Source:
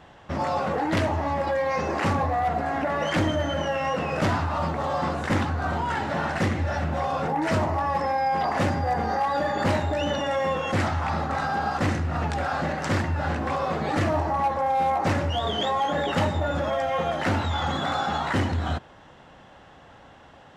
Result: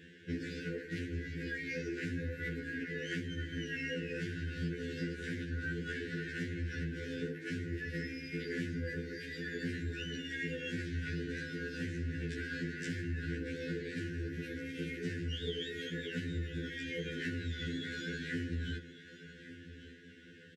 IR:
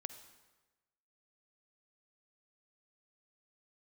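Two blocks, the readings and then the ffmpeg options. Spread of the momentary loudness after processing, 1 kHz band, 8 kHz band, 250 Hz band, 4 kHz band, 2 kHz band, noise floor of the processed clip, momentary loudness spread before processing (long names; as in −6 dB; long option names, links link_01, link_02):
3 LU, below −35 dB, −13.0 dB, −10.0 dB, −11.0 dB, −9.0 dB, −54 dBFS, 3 LU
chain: -filter_complex "[0:a]highpass=130,afftfilt=real='re*(1-between(b*sr/4096,510,1400))':imag='im*(1-between(b*sr/4096,510,1400))':win_size=4096:overlap=0.75,highshelf=frequency=3700:gain=-5.5,acompressor=threshold=-35dB:ratio=8,asplit=2[link_01][link_02];[link_02]aecho=0:1:1151:0.178[link_03];[link_01][link_03]amix=inputs=2:normalize=0,afftfilt=real='re*2*eq(mod(b,4),0)':imag='im*2*eq(mod(b,4),0)':win_size=2048:overlap=0.75,volume=1dB"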